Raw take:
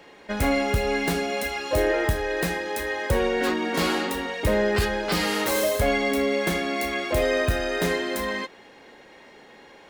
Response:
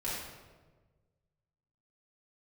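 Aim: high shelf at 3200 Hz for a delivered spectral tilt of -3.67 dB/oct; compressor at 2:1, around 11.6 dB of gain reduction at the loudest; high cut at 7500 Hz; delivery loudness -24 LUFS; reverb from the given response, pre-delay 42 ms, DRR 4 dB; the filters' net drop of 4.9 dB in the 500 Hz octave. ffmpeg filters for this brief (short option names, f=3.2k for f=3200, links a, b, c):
-filter_complex "[0:a]lowpass=7.5k,equalizer=f=500:t=o:g=-6,highshelf=f=3.2k:g=-3,acompressor=threshold=-41dB:ratio=2,asplit=2[a][b];[1:a]atrim=start_sample=2205,adelay=42[c];[b][c]afir=irnorm=-1:irlink=0,volume=-8.5dB[d];[a][d]amix=inputs=2:normalize=0,volume=10.5dB"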